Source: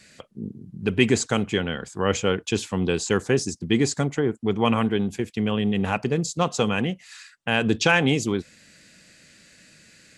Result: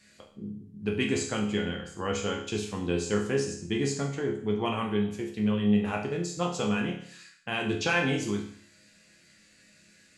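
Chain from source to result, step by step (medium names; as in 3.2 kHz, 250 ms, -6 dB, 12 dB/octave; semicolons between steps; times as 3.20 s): chord resonator C#2 major, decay 0.59 s; trim +8 dB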